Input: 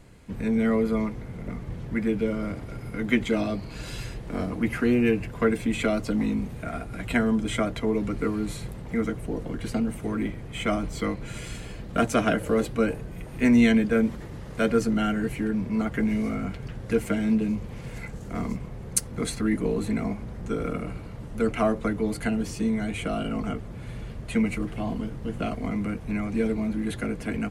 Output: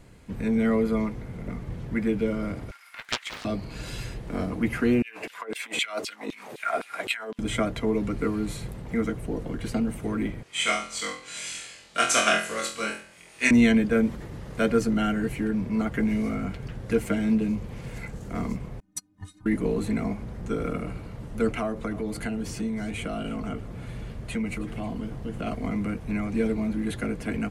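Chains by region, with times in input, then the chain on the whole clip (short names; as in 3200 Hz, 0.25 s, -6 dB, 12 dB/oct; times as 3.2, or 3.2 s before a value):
2.71–3.45 HPF 1300 Hz 24 dB/oct + Doppler distortion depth 0.7 ms
5.02–7.39 negative-ratio compressor -27 dBFS, ratio -0.5 + LFO high-pass saw down 3.9 Hz 330–3800 Hz
10.43–13.51 weighting filter ITU-R 468 + flutter echo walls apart 4 m, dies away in 0.54 s + upward expander, over -38 dBFS
18.8–19.46 frequency shift -340 Hz + metallic resonator 90 Hz, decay 0.32 s, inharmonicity 0.03 + upward expander 2.5:1, over -44 dBFS
21.59–25.47 compressor 2:1, threshold -29 dBFS + echo 0.318 s -17 dB
whole clip: dry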